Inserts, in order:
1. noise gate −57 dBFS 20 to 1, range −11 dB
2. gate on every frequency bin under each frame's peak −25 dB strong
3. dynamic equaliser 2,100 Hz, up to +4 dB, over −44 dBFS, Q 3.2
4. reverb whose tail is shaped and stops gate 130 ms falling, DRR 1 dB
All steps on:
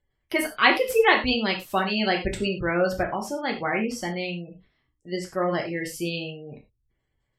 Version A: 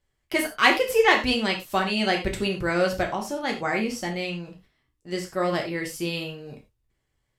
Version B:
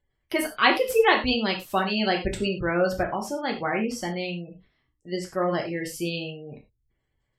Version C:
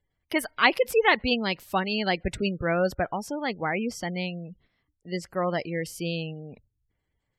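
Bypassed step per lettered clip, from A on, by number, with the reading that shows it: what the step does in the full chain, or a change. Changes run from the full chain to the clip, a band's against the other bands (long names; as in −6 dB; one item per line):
2, 8 kHz band +2.0 dB
3, 2 kHz band −2.0 dB
4, 125 Hz band +3.0 dB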